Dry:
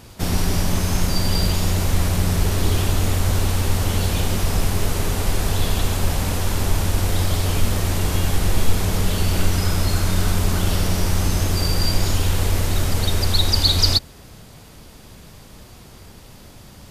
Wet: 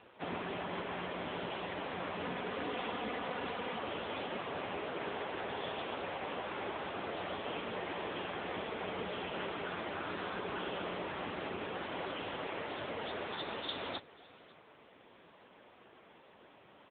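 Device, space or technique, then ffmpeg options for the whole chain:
satellite phone: -filter_complex "[0:a]asettb=1/sr,asplit=3[a][b][c];[a]atrim=end=2.224[d];[b]atrim=start=2.22:end=3.79,asetpts=PTS-STARTPTS,afade=t=in:d=0.004:c=qsin,afade=t=out:st=1.566:d=0.004:c=qsin,aecho=1:1:4.1:0.5,atrim=end_sample=69237[e];[c]atrim=start=3.786[f];[d][e]acrossfade=d=0.004:c1=hsin:c2=qsin[g];[g][f]acrossfade=d=0.004:c1=qsin:c2=hsin,highpass=380,lowpass=3.1k,aecho=1:1:545:0.0891,volume=-5.5dB" -ar 8000 -c:a libopencore_amrnb -b:a 6700

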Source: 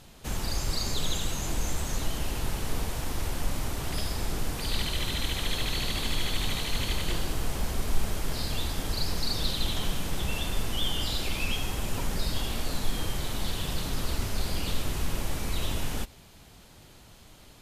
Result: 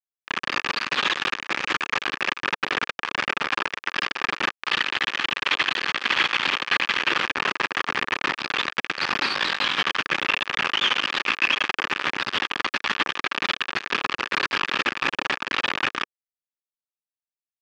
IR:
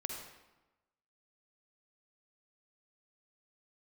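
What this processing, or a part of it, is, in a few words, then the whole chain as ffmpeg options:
hand-held game console: -filter_complex "[0:a]acrusher=bits=3:mix=0:aa=0.000001,highpass=420,equalizer=f=460:t=q:w=4:g=-4,equalizer=f=670:t=q:w=4:g=-9,equalizer=f=1.2k:t=q:w=4:g=6,equalizer=f=1.7k:t=q:w=4:g=7,equalizer=f=2.5k:t=q:w=4:g=6,equalizer=f=4k:t=q:w=4:g=-5,lowpass=f=4.1k:w=0.5412,lowpass=f=4.1k:w=1.3066,asettb=1/sr,asplit=3[a][b][c];[a]atrim=end=9.274[d];[b]atrim=start=9.27:end=9.83,asetpts=PTS-STARTPTS,afade=t=in:d=0.004:c=qsin,afade=t=out:st=0.556:d=0.004:c=qsin,asplit=2[e][f];[f]adelay=20,volume=-3.5dB[g];[e][g]amix=inputs=2:normalize=0,atrim=end_sample=24696[h];[c]atrim=start=9.826[i];[d][h]acrossfade=d=0.004:c1=hsin:c2=qsin[j];[j][i]acrossfade=d=0.004:c1=qsin:c2=hsin,volume=6dB"

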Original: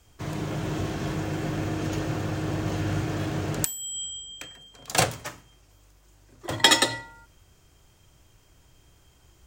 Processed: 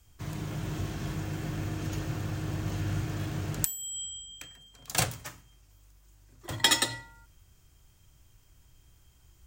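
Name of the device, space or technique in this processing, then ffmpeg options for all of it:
smiley-face EQ: -af "lowshelf=f=120:g=7,equalizer=f=500:t=o:w=1.6:g=-5,highshelf=f=9.8k:g=8.5,volume=-6dB"

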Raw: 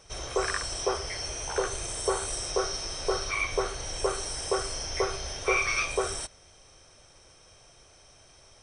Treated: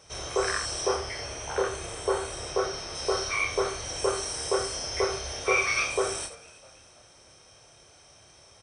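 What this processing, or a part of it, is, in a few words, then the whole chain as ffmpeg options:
slapback doubling: -filter_complex "[0:a]highpass=67,asettb=1/sr,asplit=3[a][b][c];[a]atrim=end=0.954[d];[b]atrim=start=0.95:end=2.95,asetpts=PTS-STARTPTS,afade=t=in:d=0.004:c=qsin,afade=t=out:st=1.996:d=0.004:c=qsin,acrossover=split=3700[e][f];[f]acompressor=threshold=-42dB:ratio=4:attack=1:release=60[g];[e][g]amix=inputs=2:normalize=0[h];[c]atrim=start=2.946[i];[d][h]acrossfade=d=0.004:c1=hsin:c2=qsin[j];[j][i]acrossfade=d=0.004:c1=qsin:c2=hsin,asplit=3[k][l][m];[l]adelay=28,volume=-5dB[n];[m]adelay=84,volume=-11.5dB[o];[k][n][o]amix=inputs=3:normalize=0,asplit=4[p][q][r][s];[q]adelay=326,afreqshift=71,volume=-23dB[t];[r]adelay=652,afreqshift=142,volume=-29.7dB[u];[s]adelay=978,afreqshift=213,volume=-36.5dB[v];[p][t][u][v]amix=inputs=4:normalize=0"

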